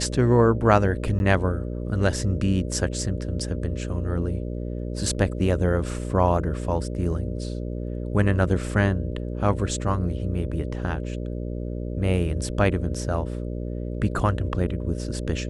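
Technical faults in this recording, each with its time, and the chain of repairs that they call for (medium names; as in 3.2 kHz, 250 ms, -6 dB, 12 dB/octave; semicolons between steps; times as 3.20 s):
buzz 60 Hz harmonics 10 -30 dBFS
1.19–1.20 s: dropout 11 ms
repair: de-hum 60 Hz, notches 10; interpolate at 1.19 s, 11 ms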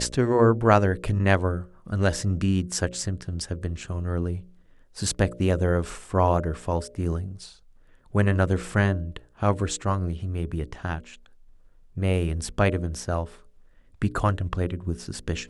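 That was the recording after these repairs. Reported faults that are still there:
nothing left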